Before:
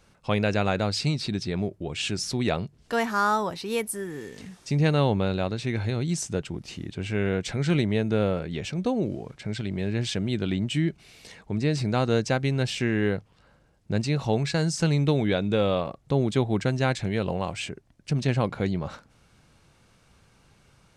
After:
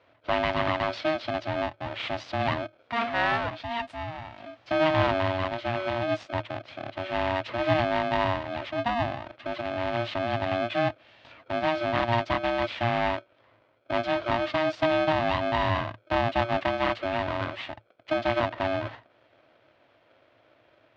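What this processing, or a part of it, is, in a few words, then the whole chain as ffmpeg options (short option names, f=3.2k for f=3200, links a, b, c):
ring modulator pedal into a guitar cabinet: -af "aeval=exprs='val(0)*sgn(sin(2*PI*470*n/s))':c=same,highpass=81,equalizer=f=110:t=q:w=4:g=10,equalizer=f=180:t=q:w=4:g=-10,equalizer=f=400:t=q:w=4:g=-8,equalizer=f=660:t=q:w=4:g=5,lowpass=f=3.5k:w=0.5412,lowpass=f=3.5k:w=1.3066,volume=-2dB"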